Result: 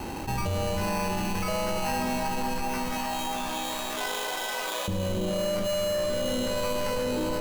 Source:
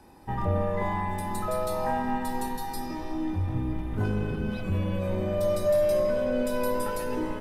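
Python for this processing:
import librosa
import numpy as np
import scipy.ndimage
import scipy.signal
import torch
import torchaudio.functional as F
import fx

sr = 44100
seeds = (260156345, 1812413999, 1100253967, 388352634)

y = fx.sample_hold(x, sr, seeds[0], rate_hz=3500.0, jitter_pct=0)
y = fx.highpass(y, sr, hz=620.0, slope=24, at=(2.68, 4.88))
y = fx.echo_alternate(y, sr, ms=294, hz=820.0, feedback_pct=60, wet_db=-4.5)
y = 10.0 ** (-22.5 / 20.0) * np.tanh(y / 10.0 ** (-22.5 / 20.0))
y = fx.env_flatten(y, sr, amount_pct=70)
y = F.gain(torch.from_numpy(y), -1.5).numpy()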